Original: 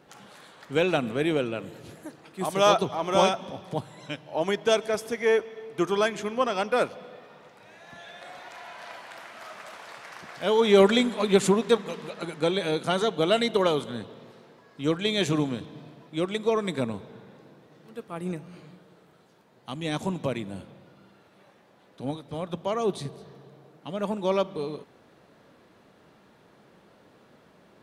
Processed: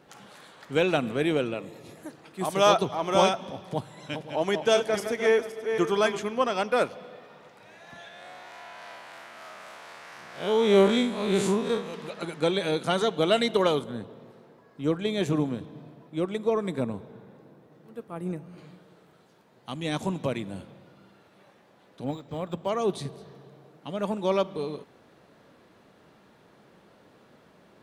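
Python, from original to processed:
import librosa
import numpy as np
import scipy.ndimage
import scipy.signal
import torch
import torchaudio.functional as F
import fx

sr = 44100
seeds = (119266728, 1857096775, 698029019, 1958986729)

y = fx.notch_comb(x, sr, f0_hz=1500.0, at=(1.54, 1.98))
y = fx.reverse_delay_fb(y, sr, ms=259, feedback_pct=42, wet_db=-7.5, at=(3.71, 6.19))
y = fx.spec_blur(y, sr, span_ms=98.0, at=(8.08, 11.94))
y = fx.peak_eq(y, sr, hz=4400.0, db=-8.5, octaves=2.9, at=(13.79, 18.58))
y = fx.resample_linear(y, sr, factor=4, at=(22.04, 22.69))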